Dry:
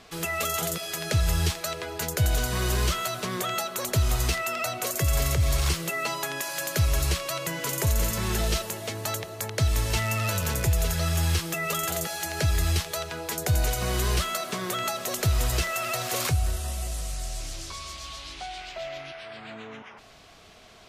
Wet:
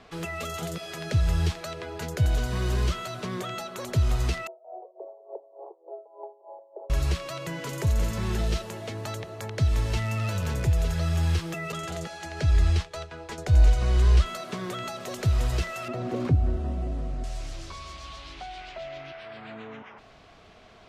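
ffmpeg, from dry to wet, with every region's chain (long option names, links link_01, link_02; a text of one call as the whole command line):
ffmpeg -i in.wav -filter_complex "[0:a]asettb=1/sr,asplit=3[link_01][link_02][link_03];[link_01]atrim=end=4.474[link_04];[link_02]atrim=start=4.47:end=6.9,asetpts=PTS-STARTPTS,afade=type=in:duration=0.004:curve=qsin,afade=type=out:start_time=2.426:duration=0.004:curve=qsin,asuperpass=centerf=580:order=12:qfactor=1.1,aeval=exprs='val(0)*pow(10,-20*(0.5-0.5*cos(2*PI*3.4*n/s))/20)':channel_layout=same[link_05];[link_03]atrim=start=6.896[link_06];[link_04][link_05]acrossfade=duration=0.004:curve1=hsin:curve2=qsin[link_07];[link_07][link_06]acrossfade=duration=0.004:curve1=qsin:curve2=hsin,asettb=1/sr,asplit=3[link_08][link_09][link_10];[link_08]atrim=end=11.724[link_11];[link_09]atrim=start=11.72:end=14.26,asetpts=PTS-STARTPTS,afade=type=in:duration=0.004:curve=qsin,afade=type=out:start_time=2.536:duration=0.004:curve=qsin,agate=range=-33dB:threshold=-31dB:ratio=3:release=100:detection=peak,lowpass=9000,asubboost=boost=7.5:cutoff=64[link_12];[link_10]atrim=start=14.256[link_13];[link_11][link_12]acrossfade=duration=0.004:curve1=hsin:curve2=qsin[link_14];[link_14][link_13]acrossfade=duration=0.004:curve1=qsin:curve2=hsin,asettb=1/sr,asplit=3[link_15][link_16][link_17];[link_15]atrim=end=15.884[link_18];[link_16]atrim=start=15.88:end=17.24,asetpts=PTS-STARTPTS,afade=type=in:duration=0.004:curve=qsin,afade=type=out:start_time=1.356:duration=0.004:curve=qsin,lowpass=frequency=1100:poles=1,equalizer=frequency=270:width=1.1:gain=14.5[link_19];[link_17]atrim=start=17.236[link_20];[link_18][link_19]acrossfade=duration=0.004:curve1=hsin:curve2=qsin[link_21];[link_21][link_20]acrossfade=duration=0.004:curve1=qsin:curve2=hsin,aemphasis=mode=reproduction:type=75fm,acrossover=split=370|3000[link_22][link_23][link_24];[link_23]acompressor=threshold=-39dB:ratio=2[link_25];[link_22][link_25][link_24]amix=inputs=3:normalize=0" out.wav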